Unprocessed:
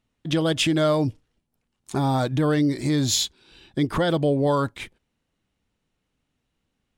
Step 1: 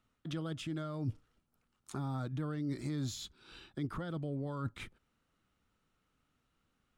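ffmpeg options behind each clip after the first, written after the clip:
ffmpeg -i in.wav -filter_complex "[0:a]areverse,acompressor=threshold=-29dB:ratio=6,areverse,equalizer=frequency=1300:width_type=o:width=0.39:gain=11.5,acrossover=split=270[link_01][link_02];[link_02]acompressor=threshold=-41dB:ratio=5[link_03];[link_01][link_03]amix=inputs=2:normalize=0,volume=-3dB" out.wav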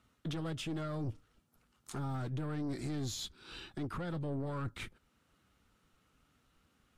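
ffmpeg -i in.wav -af "aeval=exprs='(tanh(63.1*val(0)+0.3)-tanh(0.3))/63.1':channel_layout=same,alimiter=level_in=15dB:limit=-24dB:level=0:latency=1:release=489,volume=-15dB,volume=7.5dB" -ar 44100 -c:a libvorbis -b:a 48k out.ogg

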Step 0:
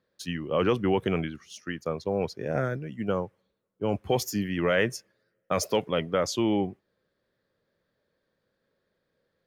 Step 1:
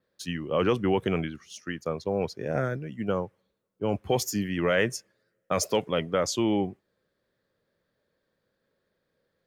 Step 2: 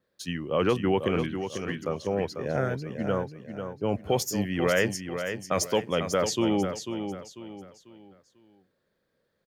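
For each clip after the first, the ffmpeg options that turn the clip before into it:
ffmpeg -i in.wav -af "adynamicequalizer=threshold=0.00316:dfrequency=7600:dqfactor=1.8:tfrequency=7600:tqfactor=1.8:attack=5:release=100:ratio=0.375:range=2.5:mode=boostabove:tftype=bell" out.wav
ffmpeg -i in.wav -af "aecho=1:1:494|988|1482|1976:0.398|0.139|0.0488|0.0171" out.wav

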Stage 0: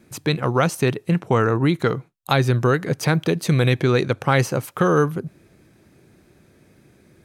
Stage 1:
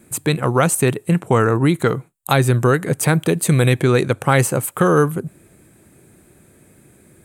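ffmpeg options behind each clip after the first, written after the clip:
ffmpeg -i in.wav -af "highshelf=frequency=6700:width_type=q:width=3:gain=7,volume=3dB" out.wav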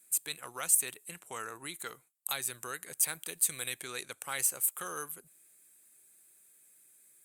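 ffmpeg -i in.wav -af "aderivative,volume=-6dB" -ar 48000 -c:a libopus -b:a 64k out.opus

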